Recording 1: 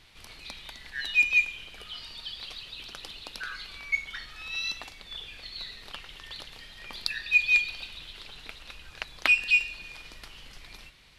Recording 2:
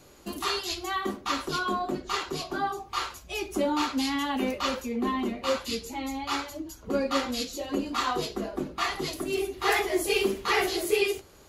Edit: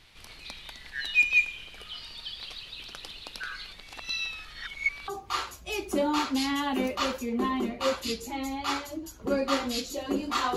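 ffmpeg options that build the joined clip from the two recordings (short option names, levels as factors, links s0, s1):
-filter_complex "[0:a]apad=whole_dur=10.56,atrim=end=10.56,asplit=2[s0][s1];[s0]atrim=end=3.732[s2];[s1]atrim=start=3.728:end=5.082,asetpts=PTS-STARTPTS,areverse[s3];[1:a]atrim=start=2.708:end=8.19[s4];[s2][s3]acrossfade=d=0.004:c1=hsin:c2=hsin[s5];[s5][s4]acrossfade=d=0.004:c1=hsin:c2=hsin"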